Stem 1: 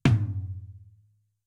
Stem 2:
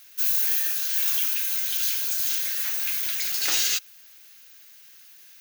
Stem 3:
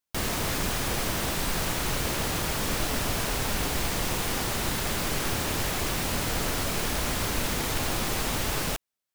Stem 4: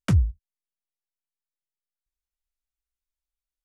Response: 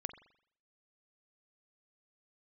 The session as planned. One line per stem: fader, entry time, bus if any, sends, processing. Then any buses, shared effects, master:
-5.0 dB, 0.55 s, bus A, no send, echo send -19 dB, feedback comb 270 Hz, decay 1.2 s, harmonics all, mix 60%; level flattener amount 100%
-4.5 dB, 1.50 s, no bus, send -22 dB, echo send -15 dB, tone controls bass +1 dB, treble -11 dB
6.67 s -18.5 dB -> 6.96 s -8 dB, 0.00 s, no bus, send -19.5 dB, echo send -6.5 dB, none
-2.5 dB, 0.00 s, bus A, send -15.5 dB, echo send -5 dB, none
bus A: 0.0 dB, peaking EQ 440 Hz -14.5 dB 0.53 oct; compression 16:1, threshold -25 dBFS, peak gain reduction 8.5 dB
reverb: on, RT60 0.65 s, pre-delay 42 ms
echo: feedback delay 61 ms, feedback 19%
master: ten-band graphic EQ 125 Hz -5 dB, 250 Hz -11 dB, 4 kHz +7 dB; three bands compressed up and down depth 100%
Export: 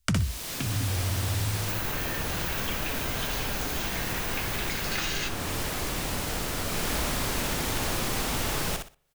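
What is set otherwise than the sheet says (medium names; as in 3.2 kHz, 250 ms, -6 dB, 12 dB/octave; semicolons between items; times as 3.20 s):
stem 3 -18.5 dB -> -12.0 dB; stem 4 -2.5 dB -> +8.5 dB; master: missing ten-band graphic EQ 125 Hz -5 dB, 250 Hz -11 dB, 4 kHz +7 dB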